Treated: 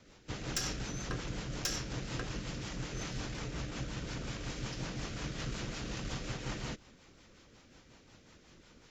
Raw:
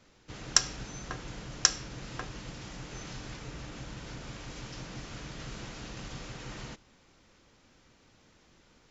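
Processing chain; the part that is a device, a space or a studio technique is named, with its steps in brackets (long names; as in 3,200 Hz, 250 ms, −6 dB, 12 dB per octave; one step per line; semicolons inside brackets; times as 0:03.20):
overdriven rotary cabinet (tube saturation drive 29 dB, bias 0.35; rotating-speaker cabinet horn 5.5 Hz)
level +6 dB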